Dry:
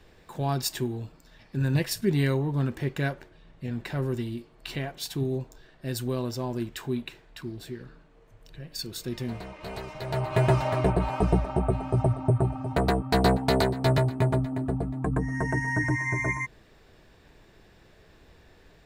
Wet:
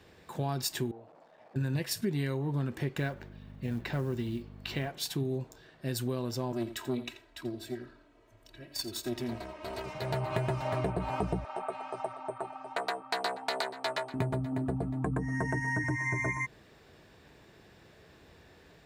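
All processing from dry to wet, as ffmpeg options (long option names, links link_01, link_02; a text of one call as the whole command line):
ffmpeg -i in.wav -filter_complex "[0:a]asettb=1/sr,asplit=3[link_01][link_02][link_03];[link_01]atrim=end=0.914[link_04];[link_02]atrim=start=0.91:end=1.56,asetpts=PTS-STARTPTS,afade=type=in:duration=0.004:curve=qsin,afade=type=out:start_time=0.646:duration=0.004:curve=qsin,aeval=exprs='val(0)+0.5*0.0075*sgn(val(0))':channel_layout=same,bandpass=frequency=670:width_type=q:width=2.8[link_05];[link_03]atrim=start=1.556[link_06];[link_04][link_05]acrossfade=duration=0.004:curve1=hsin:curve2=qsin[link_07];[link_07][link_06]acrossfade=duration=0.004:curve1=qsin:curve2=hsin,asettb=1/sr,asplit=3[link_08][link_09][link_10];[link_08]atrim=end=2.984[link_11];[link_09]atrim=start=2.98:end=4.88,asetpts=PTS-STARTPTS,afade=type=in:duration=0.004:curve=qsin,afade=type=out:start_time=1.896:duration=0.004:curve=qsin,equalizer=frequency=9900:width_type=o:width=0.63:gain=-12.5,acrusher=bits=8:mode=log:mix=0:aa=0.000001,aeval=exprs='val(0)+0.00708*(sin(2*PI*50*n/s)+sin(2*PI*2*50*n/s)/2+sin(2*PI*3*50*n/s)/3+sin(2*PI*4*50*n/s)/4+sin(2*PI*5*50*n/s)/5)':channel_layout=same[link_12];[link_10]atrim=start=4.876[link_13];[link_11][link_12]acrossfade=duration=0.004:curve1=hsin:curve2=qsin[link_14];[link_14][link_13]acrossfade=duration=0.004:curve1=qsin:curve2=hsin,asettb=1/sr,asplit=3[link_15][link_16][link_17];[link_15]atrim=end=6.524[link_18];[link_16]atrim=start=6.52:end=9.86,asetpts=PTS-STARTPTS,afade=type=in:duration=0.004:curve=qsin,afade=type=out:start_time=3.336:duration=0.004:curve=qsin,aecho=1:1:3.1:0.95,atrim=end_sample=147294,aeval=exprs='(tanh(12.6*val(0)+0.75)-tanh(0.75))/12.6':channel_layout=same,aecho=1:1:85:0.2,atrim=end_sample=147294[link_19];[link_17]atrim=start=9.856[link_20];[link_18][link_19]acrossfade=duration=0.004:curve1=hsin:curve2=qsin[link_21];[link_21][link_20]acrossfade=duration=0.004:curve1=qsin:curve2=hsin,asettb=1/sr,asplit=3[link_22][link_23][link_24];[link_22]atrim=end=11.444[link_25];[link_23]atrim=start=11.44:end=14.14,asetpts=PTS-STARTPTS,afade=type=in:duration=0.004:curve=qsin,afade=type=out:start_time=2.696:duration=0.004:curve=qsin,highpass=800,adynamicsmooth=sensitivity=8:basefreq=7800[link_26];[link_24]atrim=start=14.136[link_27];[link_25][link_26]acrossfade=duration=0.004:curve1=hsin:curve2=qsin[link_28];[link_28][link_27]acrossfade=duration=0.004:curve1=qsin:curve2=hsin,highpass=75,acompressor=threshold=-28dB:ratio=6" out.wav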